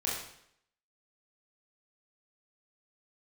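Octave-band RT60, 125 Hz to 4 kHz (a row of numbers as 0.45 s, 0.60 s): 0.65 s, 0.70 s, 0.70 s, 0.70 s, 0.70 s, 0.65 s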